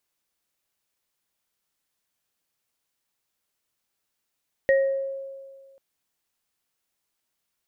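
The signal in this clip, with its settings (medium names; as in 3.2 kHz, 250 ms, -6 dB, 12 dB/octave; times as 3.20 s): sine partials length 1.09 s, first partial 543 Hz, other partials 1.88 kHz, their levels -6 dB, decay 1.77 s, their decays 0.46 s, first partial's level -15 dB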